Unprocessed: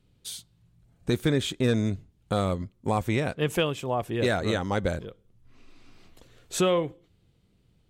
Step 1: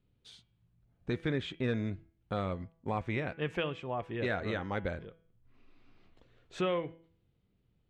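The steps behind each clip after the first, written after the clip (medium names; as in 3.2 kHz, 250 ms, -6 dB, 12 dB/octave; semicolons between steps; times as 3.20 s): low-pass 3.1 kHz 12 dB/octave; de-hum 164.5 Hz, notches 20; dynamic bell 2 kHz, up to +5 dB, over -47 dBFS, Q 1.2; trim -8.5 dB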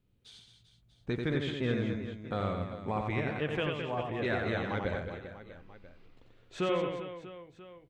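reverse bouncing-ball echo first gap 90 ms, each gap 1.4×, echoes 5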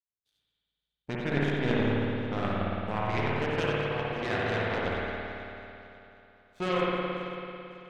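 power-law waveshaper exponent 2; thinning echo 543 ms, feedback 36%, level -19 dB; spring tank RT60 2.9 s, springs 55 ms, chirp 65 ms, DRR -5 dB; trim +6.5 dB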